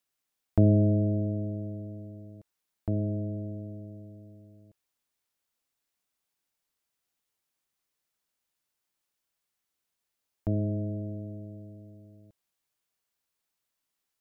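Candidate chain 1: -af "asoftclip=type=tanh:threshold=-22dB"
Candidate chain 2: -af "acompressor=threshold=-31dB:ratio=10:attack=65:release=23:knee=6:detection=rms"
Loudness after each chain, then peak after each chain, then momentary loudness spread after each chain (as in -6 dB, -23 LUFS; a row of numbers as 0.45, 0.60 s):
-33.0, -34.5 LUFS; -22.0, -14.0 dBFS; 20, 20 LU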